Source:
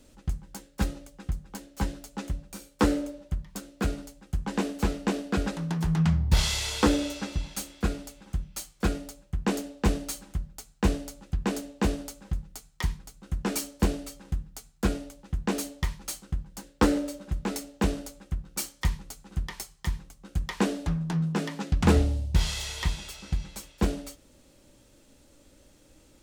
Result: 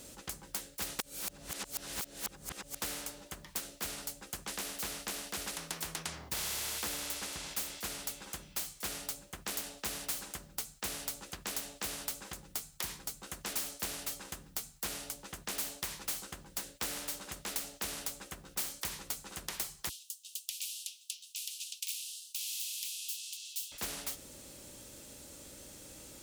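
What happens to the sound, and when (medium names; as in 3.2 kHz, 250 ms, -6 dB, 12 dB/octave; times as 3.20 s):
0.99–2.82 s: reverse
19.89–23.72 s: steep high-pass 2.8 kHz 72 dB/octave
whole clip: high-pass 49 Hz; treble shelf 5.9 kHz +11 dB; spectrum-flattening compressor 4:1; trim -9 dB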